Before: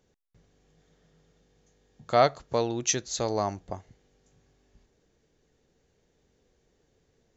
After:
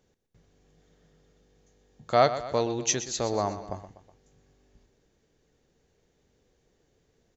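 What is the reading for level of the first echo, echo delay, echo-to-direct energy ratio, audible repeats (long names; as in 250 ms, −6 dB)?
−12.5 dB, 123 ms, −11.0 dB, 3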